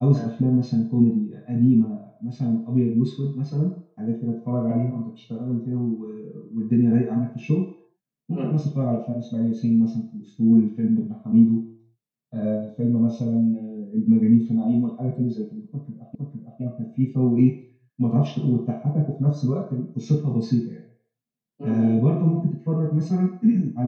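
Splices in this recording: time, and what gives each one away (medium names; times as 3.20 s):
16.15 s: repeat of the last 0.46 s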